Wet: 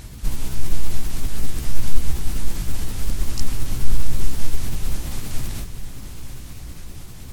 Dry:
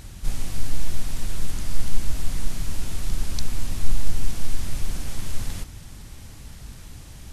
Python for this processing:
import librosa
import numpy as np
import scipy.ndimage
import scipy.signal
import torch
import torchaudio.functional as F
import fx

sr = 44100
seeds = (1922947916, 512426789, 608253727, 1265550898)

y = fx.pitch_ramps(x, sr, semitones=6.0, every_ms=183)
y = fx.echo_diffused(y, sr, ms=985, feedback_pct=43, wet_db=-12)
y = F.gain(torch.from_numpy(y), 3.5).numpy()